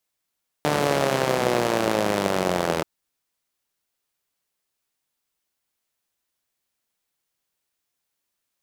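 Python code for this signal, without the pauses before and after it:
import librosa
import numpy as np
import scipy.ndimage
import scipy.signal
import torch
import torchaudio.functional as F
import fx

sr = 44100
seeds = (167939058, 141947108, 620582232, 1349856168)

y = fx.engine_four_rev(sr, seeds[0], length_s=2.18, rpm=4500, resonances_hz=(200.0, 360.0, 520.0), end_rpm=2400)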